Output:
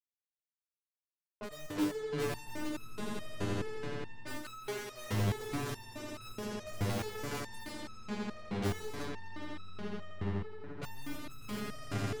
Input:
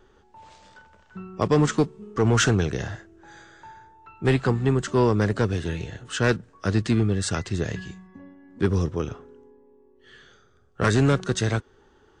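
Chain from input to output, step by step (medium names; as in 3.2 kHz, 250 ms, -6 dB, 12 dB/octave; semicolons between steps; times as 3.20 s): touch-sensitive flanger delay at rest 5.3 ms, full sweep at -16.5 dBFS; 1.75–2.45 s: comb 3 ms, depth 93%; low-pass that closes with the level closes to 460 Hz, closed at -15.5 dBFS; bit crusher 4-bit; echo with a slow build-up 85 ms, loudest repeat 8, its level -15.5 dB; waveshaping leveller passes 2; level-controlled noise filter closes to 610 Hz, open at -14.5 dBFS; 4.42–5.11 s: bass shelf 420 Hz -11.5 dB; saturation -20.5 dBFS, distortion -8 dB; resonator arpeggio 4.7 Hz 100–1300 Hz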